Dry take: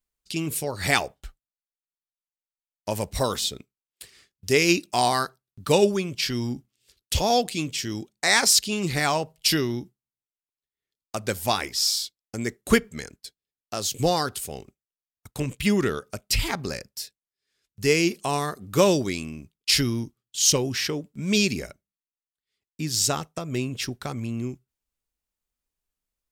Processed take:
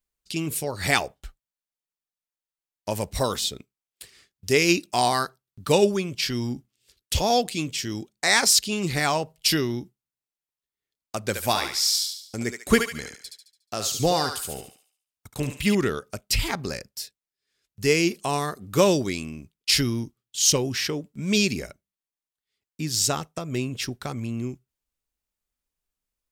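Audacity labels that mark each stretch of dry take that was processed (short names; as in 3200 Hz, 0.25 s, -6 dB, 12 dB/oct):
11.210000	15.750000	thinning echo 72 ms, feedback 45%, high-pass 880 Hz, level -4 dB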